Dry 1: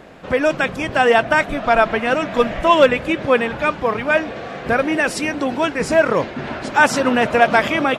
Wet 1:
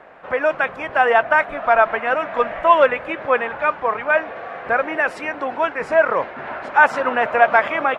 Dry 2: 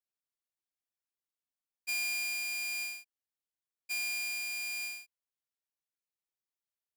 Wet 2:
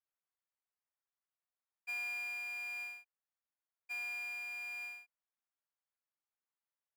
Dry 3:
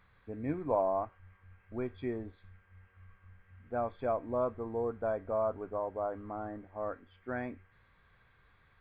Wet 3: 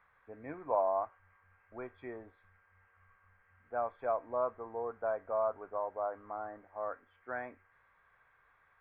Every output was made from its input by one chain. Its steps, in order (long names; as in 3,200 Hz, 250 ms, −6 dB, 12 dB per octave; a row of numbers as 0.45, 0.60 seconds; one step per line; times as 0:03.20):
three-way crossover with the lows and the highs turned down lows −17 dB, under 550 Hz, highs −22 dB, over 2,200 Hz
level +2.5 dB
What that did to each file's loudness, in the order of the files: −1.0, −6.5, −1.5 LU